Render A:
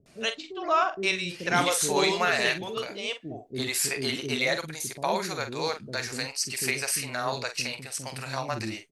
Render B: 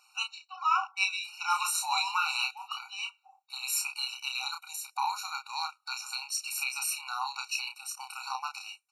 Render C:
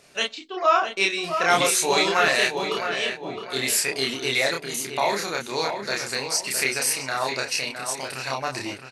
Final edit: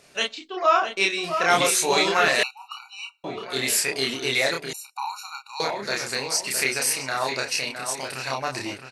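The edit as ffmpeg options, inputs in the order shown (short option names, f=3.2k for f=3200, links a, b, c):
-filter_complex "[1:a]asplit=2[a][b];[2:a]asplit=3[c][d][e];[c]atrim=end=2.432[f];[a]atrim=start=2.428:end=3.242[g];[d]atrim=start=3.238:end=4.732[h];[b]atrim=start=4.728:end=5.602[i];[e]atrim=start=5.598[j];[f][g]acrossfade=d=0.004:c1=hsin:c2=hsin[k];[k][h]acrossfade=d=0.004:c1=hsin:c2=hsin[l];[l][i]acrossfade=d=0.004:c1=hsin:c2=hsin[m];[m][j]acrossfade=d=0.004:c1=hsin:c2=hsin"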